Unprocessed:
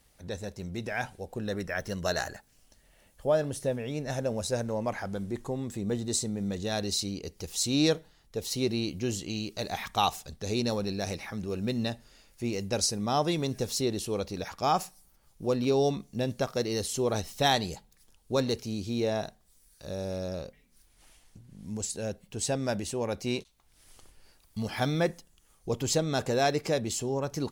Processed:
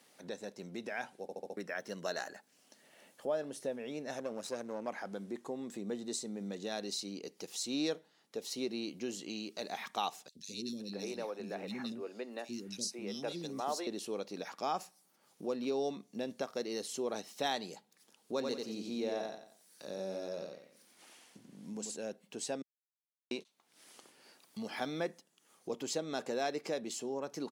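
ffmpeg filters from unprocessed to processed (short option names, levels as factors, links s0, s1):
-filter_complex "[0:a]asettb=1/sr,asplit=3[s0][s1][s2];[s0]atrim=end=4.184[s3];[s1]atrim=start=4.18:end=4.88,asetpts=PTS-STARTPTS,afade=t=in:d=0.004:c=qsin,afade=t=out:st=0.696:d=0.004:c=qsin,aeval=exprs='if(lt(val(0),0),0.447*val(0),val(0))':c=same[s4];[s2]atrim=start=4.876[s5];[s3][s4]acrossfade=d=0.004:c1=hsin:c2=qsin[s6];[s6][s5]acrossfade=d=0.004:c1=qsin:c2=hsin,asettb=1/sr,asplit=3[s7][s8][s9];[s7]atrim=end=10.284[s10];[s8]atrim=start=10.28:end=13.87,asetpts=PTS-STARTPTS,afade=t=in:d=0.004:c=qsin,afade=t=out:st=3.586:d=0.004:c=qsin,acrossover=split=320|2900[s11][s12][s13];[s11]adelay=70[s14];[s12]adelay=520[s15];[s14][s15][s13]amix=inputs=3:normalize=0,atrim=end_sample=158319[s16];[s9]atrim=start=13.866[s17];[s10][s16]acrossfade=d=0.004:c1=hsin:c2=qsin[s18];[s18][s17]acrossfade=d=0.004:c1=qsin:c2=hsin,asplit=3[s19][s20][s21];[s19]afade=t=out:st=18.4:d=0.02[s22];[s20]aecho=1:1:89|178|267|356:0.596|0.179|0.0536|0.0161,afade=t=in:st=18.4:d=0.02,afade=t=out:st=21.95:d=0.02[s23];[s21]afade=t=in:st=21.95:d=0.02[s24];[s22][s23][s24]amix=inputs=3:normalize=0,asplit=8[s25][s26][s27][s28][s29][s30][s31][s32];[s25]atrim=end=1.292[s33];[s26]atrim=start=1.218:end=1.292[s34];[s27]atrim=start=1.218:end=1.292[s35];[s28]atrim=start=1.218:end=1.292[s36];[s29]atrim=start=1.218:end=1.292[s37];[s30]atrim=start=1.568:end=22.62,asetpts=PTS-STARTPTS,afade=t=out:st=21.048:d=0.004:c=hsin[s38];[s31]atrim=start=22.62:end=23.31,asetpts=PTS-STARTPTS,volume=0[s39];[s32]atrim=start=23.31,asetpts=PTS-STARTPTS,afade=t=in:d=0.004:c=hsin[s40];[s33][s34]acrossfade=d=0.004:c1=hsin:c2=hsin[s41];[s41][s35]acrossfade=d=0.004:c1=hsin:c2=hsin[s42];[s42][s36]acrossfade=d=0.004:c1=hsin:c2=hsin[s43];[s43][s37]acrossfade=d=0.004:c1=hsin:c2=hsin[s44];[s38][s39][s40]concat=n=3:v=0:a=1[s45];[s44][s45]acrossfade=d=0.004:c1=hsin:c2=hsin,highpass=f=210:w=0.5412,highpass=f=210:w=1.3066,acompressor=threshold=0.00126:ratio=1.5,highshelf=f=9300:g=-7.5,volume=1.5"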